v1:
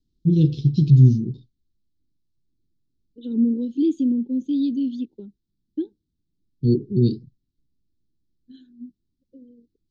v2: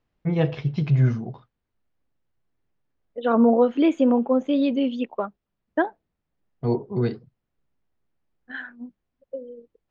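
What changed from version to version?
first voice −7.5 dB
master: remove elliptic band-stop filter 330–4,000 Hz, stop band 40 dB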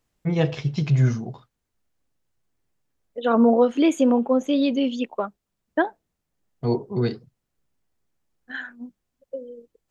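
master: remove high-frequency loss of the air 220 metres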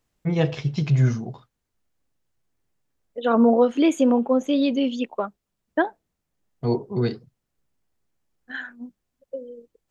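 nothing changed

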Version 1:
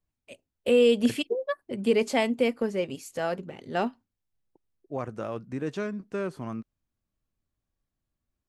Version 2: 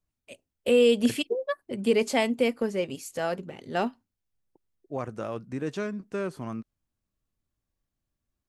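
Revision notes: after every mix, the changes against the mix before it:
master: add high-shelf EQ 5,100 Hz +4.5 dB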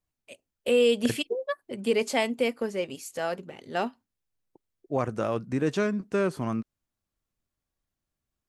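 first voice: add low-shelf EQ 260 Hz −6.5 dB
second voice +5.5 dB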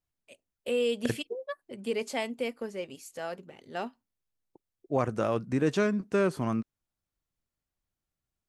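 first voice −6.5 dB

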